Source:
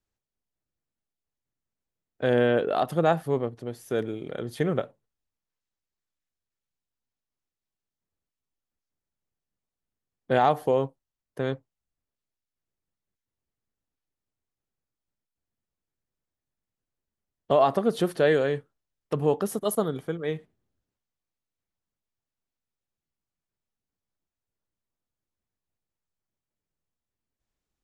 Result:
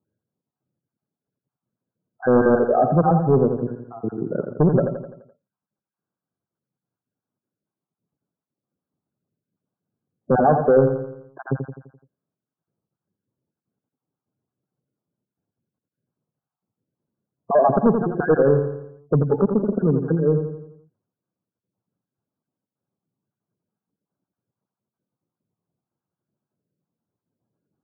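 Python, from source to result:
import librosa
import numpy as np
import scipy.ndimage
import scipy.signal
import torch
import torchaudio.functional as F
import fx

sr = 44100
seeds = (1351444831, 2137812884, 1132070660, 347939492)

p1 = fx.spec_dropout(x, sr, seeds[0], share_pct=32)
p2 = scipy.signal.sosfilt(scipy.signal.butter(4, 130.0, 'highpass', fs=sr, output='sos'), p1)
p3 = fx.spec_gate(p2, sr, threshold_db=-15, keep='strong')
p4 = fx.tilt_eq(p3, sr, slope=-3.5)
p5 = fx.fold_sine(p4, sr, drive_db=8, ceiling_db=-7.0)
p6 = p4 + (p5 * 10.0 ** (-7.5 / 20.0))
p7 = fx.brickwall_lowpass(p6, sr, high_hz=1700.0)
p8 = fx.echo_feedback(p7, sr, ms=85, feedback_pct=50, wet_db=-7)
y = p8 * 10.0 ** (-2.0 / 20.0)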